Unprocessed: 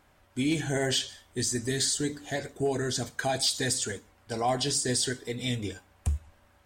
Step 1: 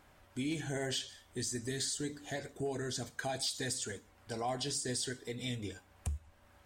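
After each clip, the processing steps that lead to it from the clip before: compression 1.5:1, threshold -50 dBFS, peak gain reduction 10 dB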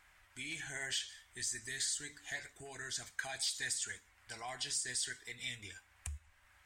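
graphic EQ 125/250/500/2000/8000 Hz -8/-11/-11/+9/+5 dB; trim -4 dB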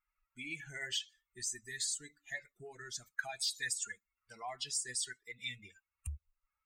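expander on every frequency bin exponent 2; trim +4.5 dB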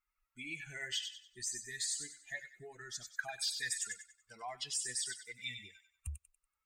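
feedback echo behind a high-pass 95 ms, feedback 34%, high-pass 2 kHz, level -6.5 dB; trim -1 dB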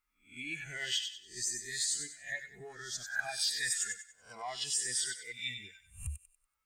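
reverse spectral sustain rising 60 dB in 0.36 s; trim +2.5 dB

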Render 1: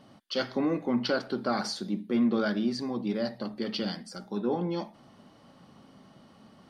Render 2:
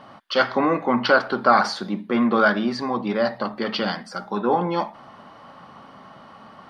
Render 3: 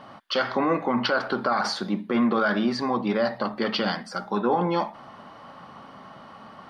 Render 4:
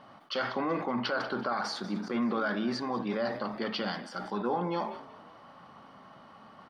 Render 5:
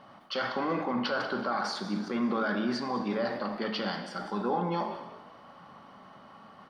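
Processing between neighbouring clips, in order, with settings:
FFT filter 330 Hz 0 dB, 1.1 kHz +14 dB, 8.3 kHz -5 dB; trim +4.5 dB
peak limiter -14 dBFS, peak gain reduction 10.5 dB
frequency-shifting echo 190 ms, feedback 49%, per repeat +49 Hz, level -18 dB; decay stretcher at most 75 dB/s; trim -8 dB
gated-style reverb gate 420 ms falling, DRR 7 dB

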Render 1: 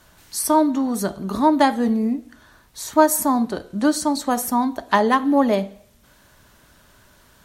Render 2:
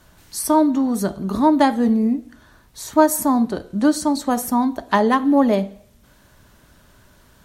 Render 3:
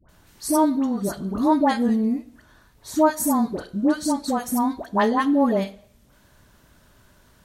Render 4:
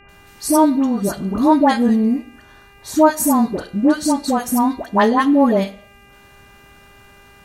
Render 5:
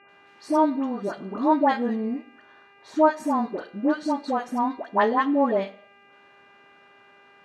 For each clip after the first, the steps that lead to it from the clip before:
bass shelf 450 Hz +5.5 dB; trim -1.5 dB
phase dispersion highs, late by 90 ms, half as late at 1 kHz; trim -3.5 dB
mains buzz 400 Hz, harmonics 7, -55 dBFS 0 dB/octave; trim +5.5 dB
band-pass 320–2800 Hz; trim -5 dB

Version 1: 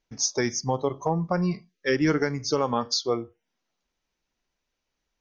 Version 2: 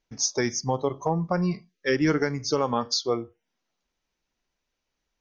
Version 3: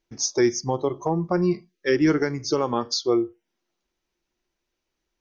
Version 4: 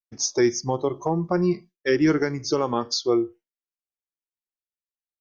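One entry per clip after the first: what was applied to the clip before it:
no audible change
peaking EQ 350 Hz +12.5 dB 0.22 oct
expander -37 dBFS

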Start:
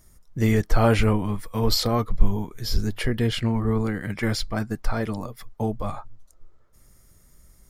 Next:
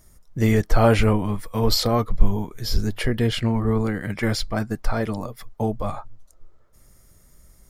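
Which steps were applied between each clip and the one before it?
peaking EQ 610 Hz +2.5 dB 0.77 oct; trim +1.5 dB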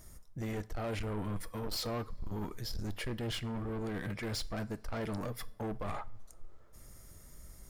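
reverse; compression 6:1, threshold -28 dBFS, peak gain reduction 20.5 dB; reverse; saturation -33 dBFS, distortion -9 dB; two-slope reverb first 0.39 s, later 3.3 s, from -21 dB, DRR 15.5 dB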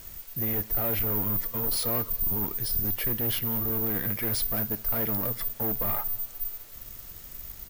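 feedback delay 190 ms, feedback 52%, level -23.5 dB; careless resampling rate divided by 3×, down filtered, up zero stuff; in parallel at -4 dB: word length cut 8-bit, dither triangular

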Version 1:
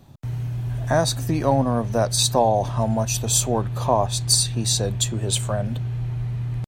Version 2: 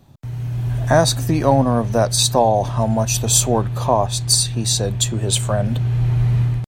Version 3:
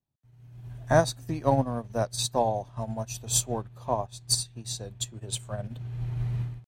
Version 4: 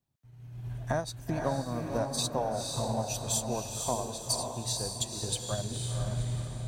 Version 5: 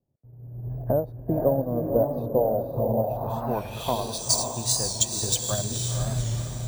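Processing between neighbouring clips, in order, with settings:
level rider gain up to 13 dB; trim -1 dB
upward expansion 2.5:1, over -32 dBFS; trim -5.5 dB
compression 6:1, threshold -32 dBFS, peak gain reduction 16 dB; echo that smears into a reverb 507 ms, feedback 42%, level -3.5 dB; trim +3.5 dB
low-pass sweep 520 Hz -> 7.2 kHz, 2.99–4.31 s; careless resampling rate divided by 3×, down none, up hold; warped record 45 rpm, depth 100 cents; trim +5 dB

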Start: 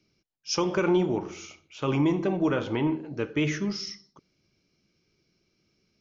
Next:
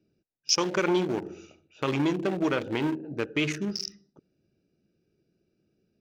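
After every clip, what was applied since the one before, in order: local Wiener filter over 41 samples; tilt EQ +2.5 dB/octave; in parallel at +2 dB: compression, threshold -37 dBFS, peak gain reduction 15.5 dB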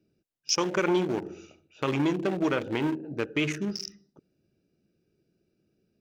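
dynamic bell 4.4 kHz, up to -5 dB, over -44 dBFS, Q 2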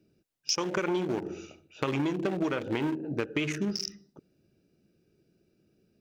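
compression, threshold -30 dBFS, peak gain reduction 9.5 dB; trim +4 dB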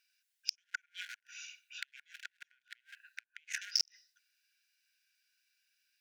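inverted gate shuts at -19 dBFS, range -40 dB; brick-wall FIR high-pass 1.4 kHz; trim +5 dB

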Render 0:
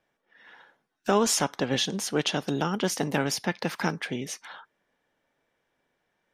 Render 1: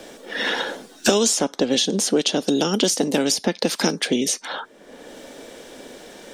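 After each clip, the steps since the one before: graphic EQ 125/250/500/1000/2000/4000/8000 Hz -9/+8/+7/-4/-4/+6/+10 dB; three bands compressed up and down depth 100%; trim +1.5 dB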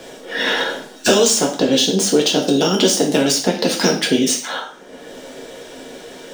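median filter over 3 samples; two-slope reverb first 0.43 s, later 1.6 s, from -27 dB, DRR 0 dB; trim +2 dB

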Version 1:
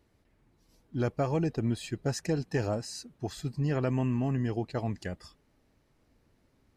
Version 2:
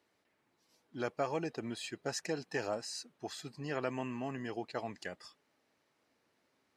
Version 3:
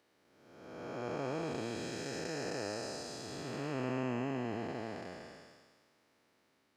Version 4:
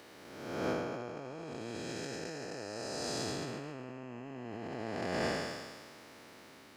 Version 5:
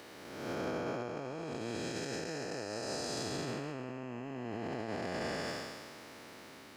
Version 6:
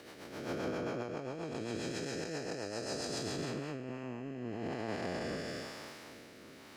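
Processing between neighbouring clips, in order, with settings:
frequency weighting A; trim -1.5 dB
spectral blur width 662 ms; trim +5.5 dB
compressor with a negative ratio -50 dBFS, ratio -1; trim +9.5 dB
peak limiter -31.5 dBFS, peak gain reduction 9 dB; trim +3 dB
rotary cabinet horn 7.5 Hz, later 1 Hz, at 3.17 s; trim +2 dB

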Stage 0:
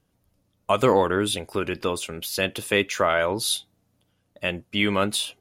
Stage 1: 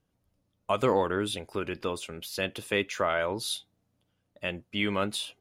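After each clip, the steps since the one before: treble shelf 8.1 kHz -6.5 dB; trim -6 dB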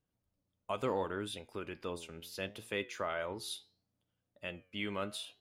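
flange 0.71 Hz, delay 7.7 ms, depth 4.9 ms, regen +86%; trim -5 dB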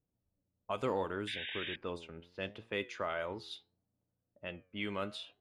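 level-controlled noise filter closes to 750 Hz, open at -32.5 dBFS; painted sound noise, 1.27–1.76 s, 1.5–3.8 kHz -42 dBFS

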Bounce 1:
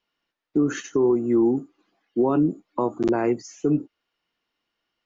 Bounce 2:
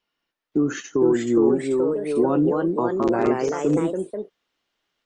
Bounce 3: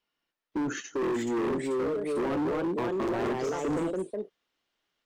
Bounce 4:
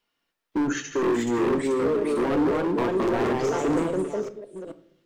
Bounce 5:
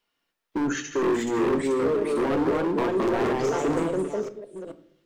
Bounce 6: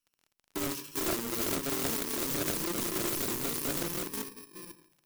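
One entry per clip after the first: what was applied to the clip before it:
ever faster or slower copies 519 ms, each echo +2 st, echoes 3
hard clipper -22.5 dBFS, distortion -7 dB; trim -4 dB
chunks repeated in reverse 429 ms, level -11 dB; on a send at -11 dB: reverberation RT60 0.65 s, pre-delay 4 ms; on the sum: trim +5 dB
hum notches 60/120/180/240/300 Hz
bit-reversed sample order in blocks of 64 samples; crackle 32 per s -39 dBFS; loudspeaker Doppler distortion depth 0.7 ms; trim -7 dB

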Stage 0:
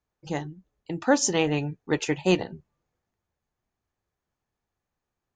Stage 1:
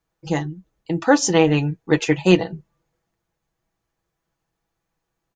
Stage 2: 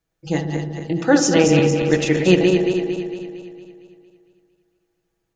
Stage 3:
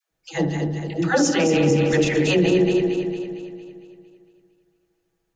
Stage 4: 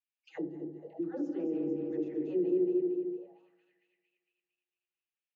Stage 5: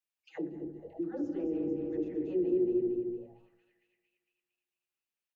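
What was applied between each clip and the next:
dynamic bell 7.4 kHz, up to -5 dB, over -41 dBFS, Q 1; comb 6.1 ms, depth 56%; trim +5.5 dB
backward echo that repeats 114 ms, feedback 72%, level -5 dB; peaking EQ 1 kHz -8 dB 0.62 oct; filtered feedback delay 73 ms, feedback 82%, low-pass 1.1 kHz, level -9 dB
phase dispersion lows, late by 111 ms, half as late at 530 Hz; peak limiter -9.5 dBFS, peak gain reduction 7.5 dB
auto-wah 350–2700 Hz, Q 4.5, down, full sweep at -22 dBFS; trim -9 dB
frequency-shifting echo 117 ms, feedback 48%, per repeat -120 Hz, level -21.5 dB

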